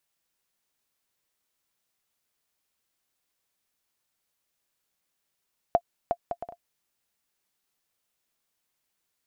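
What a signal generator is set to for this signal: bouncing ball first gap 0.36 s, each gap 0.56, 692 Hz, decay 61 ms -9.5 dBFS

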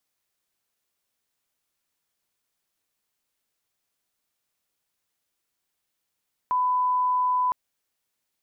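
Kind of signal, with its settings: line-up tone -20 dBFS 1.01 s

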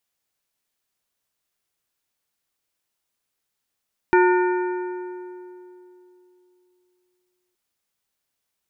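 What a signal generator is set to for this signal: metal hit plate, length 3.42 s, lowest mode 362 Hz, modes 5, decay 3.18 s, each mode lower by 4 dB, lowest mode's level -13 dB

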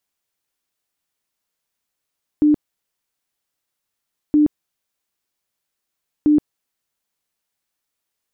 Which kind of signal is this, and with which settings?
tone bursts 299 Hz, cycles 37, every 1.92 s, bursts 3, -10 dBFS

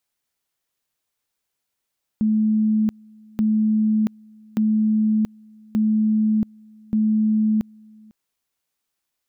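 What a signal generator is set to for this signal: two-level tone 216 Hz -15.5 dBFS, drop 28.5 dB, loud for 0.68 s, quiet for 0.50 s, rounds 5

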